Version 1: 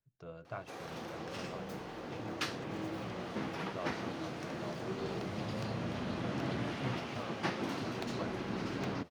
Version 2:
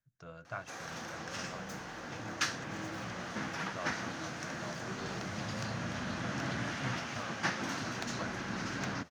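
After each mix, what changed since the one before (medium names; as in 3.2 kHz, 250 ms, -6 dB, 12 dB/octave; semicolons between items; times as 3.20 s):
master: add fifteen-band graphic EQ 400 Hz -7 dB, 1.6 kHz +8 dB, 6.3 kHz +11 dB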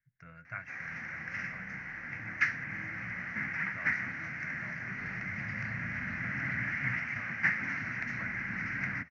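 background: add distance through air 85 m; master: add FFT filter 150 Hz 0 dB, 270 Hz -5 dB, 380 Hz -14 dB, 1.1 kHz -8 dB, 2.1 kHz +15 dB, 3.4 kHz -20 dB, 5.7 kHz -8 dB, 9.1 kHz -29 dB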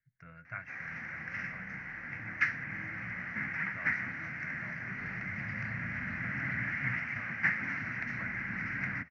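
master: add distance through air 84 m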